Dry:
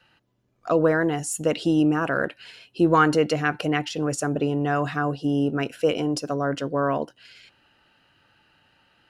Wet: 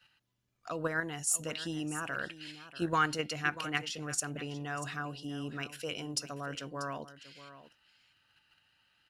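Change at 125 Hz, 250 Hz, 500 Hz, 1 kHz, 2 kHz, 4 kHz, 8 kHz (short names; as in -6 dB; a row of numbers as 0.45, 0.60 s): -13.0, -16.5, -17.0, -11.0, -7.5, -4.5, -1.0 dB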